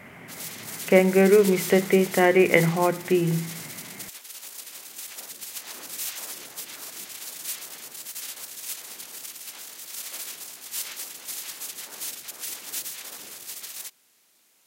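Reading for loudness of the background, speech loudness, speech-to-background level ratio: -34.5 LUFS, -20.5 LUFS, 14.0 dB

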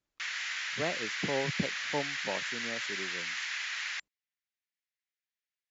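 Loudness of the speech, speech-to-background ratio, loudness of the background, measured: -38.0 LUFS, -3.5 dB, -34.5 LUFS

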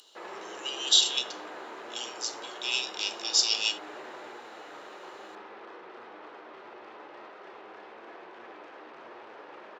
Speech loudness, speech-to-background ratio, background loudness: -27.0 LUFS, 17.5 dB, -44.5 LUFS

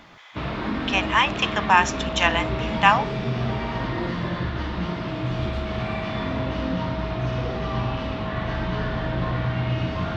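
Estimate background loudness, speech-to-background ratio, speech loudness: -27.5 LUFS, 6.5 dB, -21.0 LUFS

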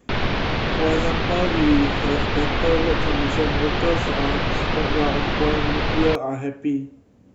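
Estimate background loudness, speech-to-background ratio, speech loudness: -23.0 LUFS, -2.0 dB, -25.0 LUFS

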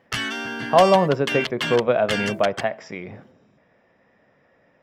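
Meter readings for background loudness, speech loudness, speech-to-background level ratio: -27.5 LUFS, -20.5 LUFS, 7.0 dB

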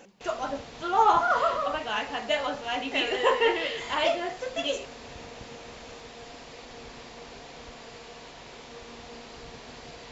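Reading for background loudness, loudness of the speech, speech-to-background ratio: -44.0 LUFS, -27.0 LUFS, 17.0 dB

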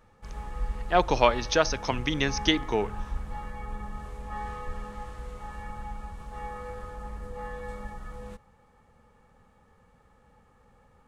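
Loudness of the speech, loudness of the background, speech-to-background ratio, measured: -26.0 LUFS, -39.0 LUFS, 13.0 dB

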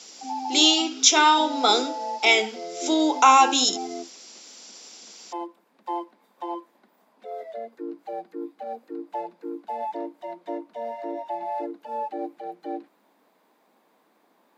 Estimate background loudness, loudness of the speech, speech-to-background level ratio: -34.0 LUFS, -19.0 LUFS, 15.0 dB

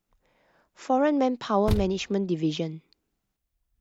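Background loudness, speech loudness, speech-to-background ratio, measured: -32.5 LUFS, -26.0 LUFS, 6.5 dB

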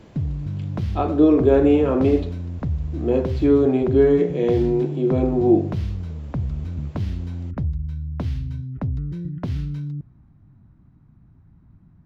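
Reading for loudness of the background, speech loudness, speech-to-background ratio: -28.5 LUFS, -19.0 LUFS, 9.5 dB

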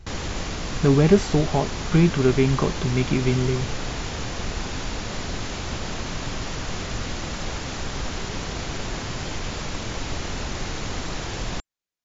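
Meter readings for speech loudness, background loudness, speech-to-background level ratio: -21.5 LUFS, -30.5 LUFS, 9.0 dB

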